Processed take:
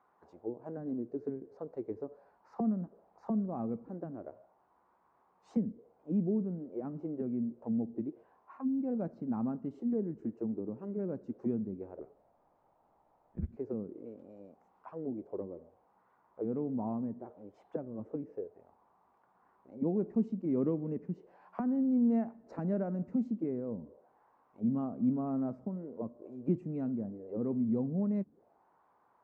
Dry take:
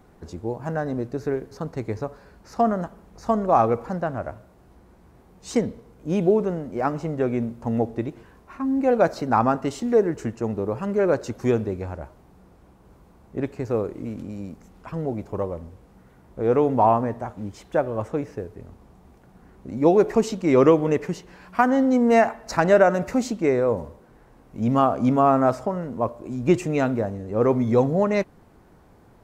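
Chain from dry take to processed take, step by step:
envelope filter 210–1,100 Hz, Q 2.9, down, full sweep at −21 dBFS
0:11.99–0:13.57: frequency shifter −190 Hz
level −5 dB

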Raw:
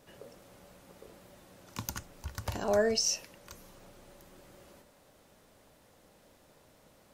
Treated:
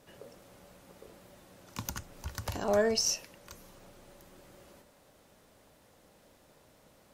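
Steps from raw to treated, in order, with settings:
harmonic generator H 6 −28 dB, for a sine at −14.5 dBFS
0:01.85–0:02.56: multiband upward and downward compressor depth 40%

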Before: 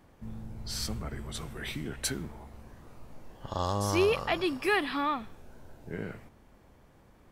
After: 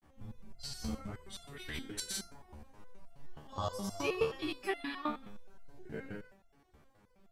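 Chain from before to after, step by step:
granular cloud, pitch spread up and down by 0 semitones
hum removal 52.91 Hz, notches 33
step-sequenced resonator 9.5 Hz 75–690 Hz
level +6.5 dB

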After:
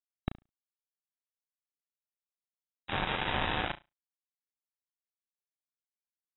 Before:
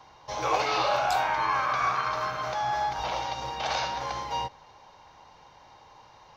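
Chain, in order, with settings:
upward compression, threshold −35 dBFS
low-pass filter sweep 2,800 Hz → 340 Hz, 0:01.81–0:05.16
comparator with hysteresis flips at −33 dBFS
0:02.88–0:03.72: frequency shifter −36 Hz
bit reduction 4 bits
linear-phase brick-wall low-pass 3,900 Hz
flutter between parallel walls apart 6 metres, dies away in 0.21 s
level −2 dB

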